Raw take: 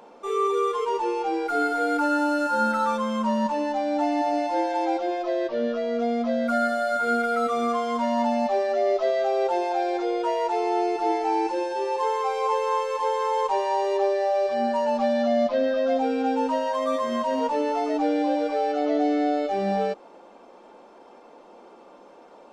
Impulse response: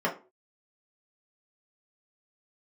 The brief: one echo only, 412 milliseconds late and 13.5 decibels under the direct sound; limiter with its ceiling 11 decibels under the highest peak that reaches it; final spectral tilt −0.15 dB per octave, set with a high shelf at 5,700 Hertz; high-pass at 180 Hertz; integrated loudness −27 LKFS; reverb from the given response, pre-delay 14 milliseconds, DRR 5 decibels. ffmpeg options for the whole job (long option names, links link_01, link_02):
-filter_complex "[0:a]highpass=180,highshelf=frequency=5700:gain=-8,alimiter=limit=-23.5dB:level=0:latency=1,aecho=1:1:412:0.211,asplit=2[link_01][link_02];[1:a]atrim=start_sample=2205,adelay=14[link_03];[link_02][link_03]afir=irnorm=-1:irlink=0,volume=-16.5dB[link_04];[link_01][link_04]amix=inputs=2:normalize=0,volume=1.5dB"